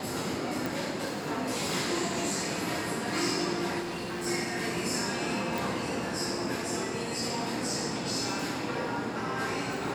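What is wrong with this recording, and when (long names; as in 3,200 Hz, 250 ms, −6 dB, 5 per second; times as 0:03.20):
0:00.66: click
0:03.81–0:04.27: clipping −31.5 dBFS
0:05.58: click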